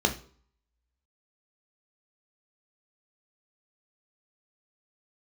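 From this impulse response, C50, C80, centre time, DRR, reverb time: 13.5 dB, 18.5 dB, 10 ms, 4.5 dB, no single decay rate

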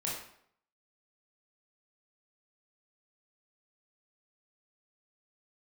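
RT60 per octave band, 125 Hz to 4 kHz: 0.60 s, 0.65 s, 0.65 s, 0.65 s, 0.60 s, 0.50 s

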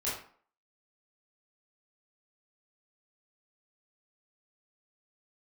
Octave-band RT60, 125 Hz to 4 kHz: 0.35 s, 0.50 s, 0.50 s, 0.50 s, 0.40 s, 0.35 s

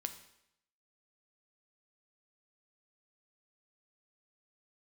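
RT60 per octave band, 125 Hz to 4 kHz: 0.80 s, 0.80 s, 0.75 s, 0.80 s, 0.75 s, 0.75 s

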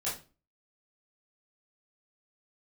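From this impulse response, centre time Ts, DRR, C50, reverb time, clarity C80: 33 ms, -9.5 dB, 7.0 dB, 0.35 s, 13.5 dB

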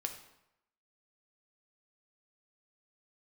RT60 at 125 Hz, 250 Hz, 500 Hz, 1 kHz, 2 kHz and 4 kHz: 0.85 s, 0.80 s, 0.85 s, 0.85 s, 0.75 s, 0.65 s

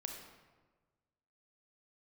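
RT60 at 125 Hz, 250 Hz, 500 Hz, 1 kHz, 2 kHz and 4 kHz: 1.7 s, 1.5 s, 1.4 s, 1.3 s, 1.1 s, 0.85 s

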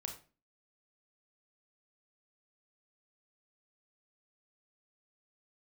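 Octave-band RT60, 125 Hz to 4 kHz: 0.40 s, 0.50 s, 0.40 s, 0.35 s, 0.30 s, 0.30 s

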